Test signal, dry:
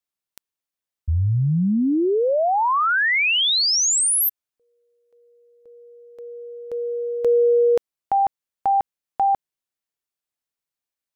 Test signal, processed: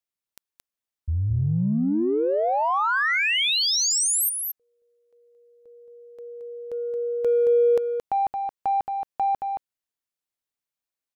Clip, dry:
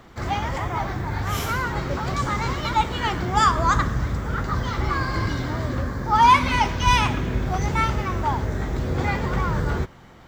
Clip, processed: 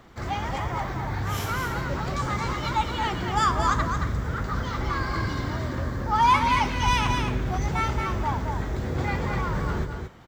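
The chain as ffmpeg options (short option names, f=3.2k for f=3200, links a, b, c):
-filter_complex "[0:a]asplit=2[a][b];[b]asoftclip=type=tanh:threshold=-22.5dB,volume=-11.5dB[c];[a][c]amix=inputs=2:normalize=0,aecho=1:1:223:0.531,volume=-5.5dB"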